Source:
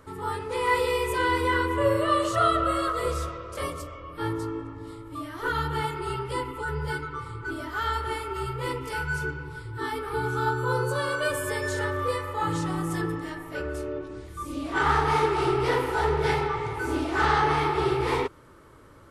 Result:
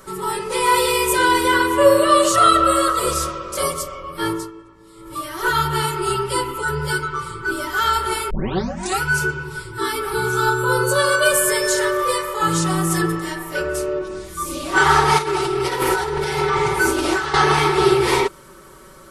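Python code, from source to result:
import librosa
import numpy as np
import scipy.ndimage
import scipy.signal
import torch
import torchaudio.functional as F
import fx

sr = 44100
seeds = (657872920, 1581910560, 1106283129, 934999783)

y = fx.over_compress(x, sr, threshold_db=-29.0, ratio=-1.0, at=(15.18, 17.34))
y = fx.edit(y, sr, fx.fade_down_up(start_s=4.31, length_s=0.82, db=-13.5, fade_s=0.2),
    fx.tape_start(start_s=8.3, length_s=0.72), tone=tone)
y = fx.bass_treble(y, sr, bass_db=-2, treble_db=10)
y = y + 0.92 * np.pad(y, (int(5.3 * sr / 1000.0), 0))[:len(y)]
y = y * 10.0 ** (6.0 / 20.0)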